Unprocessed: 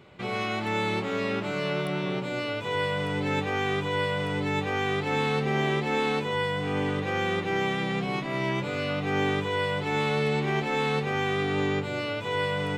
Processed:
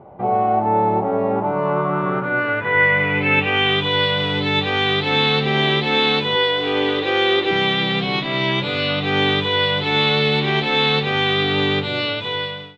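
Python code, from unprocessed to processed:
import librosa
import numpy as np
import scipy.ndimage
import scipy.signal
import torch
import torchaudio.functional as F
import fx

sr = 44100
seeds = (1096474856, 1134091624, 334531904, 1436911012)

y = fx.fade_out_tail(x, sr, length_s=0.75)
y = fx.filter_sweep_lowpass(y, sr, from_hz=780.0, to_hz=3700.0, start_s=1.27, end_s=3.95, q=4.8)
y = fx.low_shelf_res(y, sr, hz=260.0, db=-8.5, q=3.0, at=(6.35, 7.51))
y = y * librosa.db_to_amplitude(6.5)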